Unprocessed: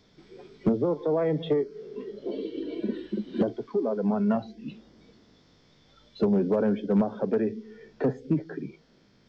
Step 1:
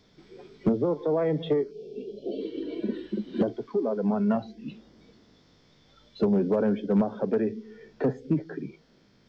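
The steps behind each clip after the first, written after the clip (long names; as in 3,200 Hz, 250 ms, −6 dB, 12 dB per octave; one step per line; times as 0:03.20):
time-frequency box erased 0:01.71–0:02.41, 790–2,300 Hz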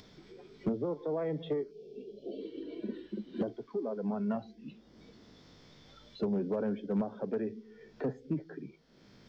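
upward compression, threshold −37 dBFS
level −8.5 dB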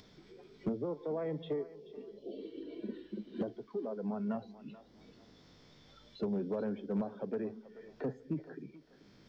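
feedback echo with a high-pass in the loop 434 ms, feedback 31%, high-pass 350 Hz, level −15 dB
level −3 dB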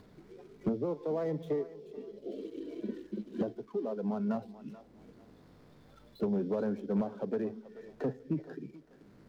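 running median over 15 samples
level +3.5 dB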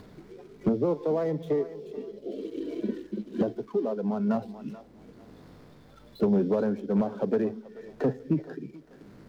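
amplitude tremolo 1.1 Hz, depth 32%
level +8 dB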